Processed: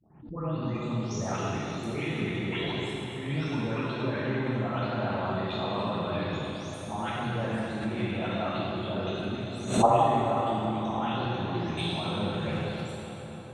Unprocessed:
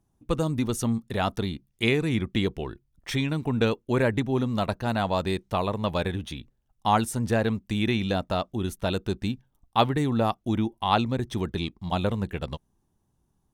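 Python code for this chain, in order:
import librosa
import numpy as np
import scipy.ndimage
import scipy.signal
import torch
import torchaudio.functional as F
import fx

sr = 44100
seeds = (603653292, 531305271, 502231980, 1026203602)

p1 = fx.spec_delay(x, sr, highs='late', ms=462)
p2 = scipy.signal.sosfilt(scipy.signal.butter(2, 94.0, 'highpass', fs=sr, output='sos'), p1)
p3 = fx.env_lowpass_down(p2, sr, base_hz=2100.0, full_db=-26.5)
p4 = scipy.signal.sosfilt(scipy.signal.butter(4, 10000.0, 'lowpass', fs=sr, output='sos'), p3)
p5 = fx.high_shelf(p4, sr, hz=4000.0, db=9.0)
p6 = fx.level_steps(p5, sr, step_db=19)
p7 = p6 + fx.echo_filtered(p6, sr, ms=277, feedback_pct=80, hz=3900.0, wet_db=-13, dry=0)
p8 = fx.rev_plate(p7, sr, seeds[0], rt60_s=2.8, hf_ratio=0.95, predelay_ms=0, drr_db=-7.5)
y = fx.pre_swell(p8, sr, db_per_s=100.0)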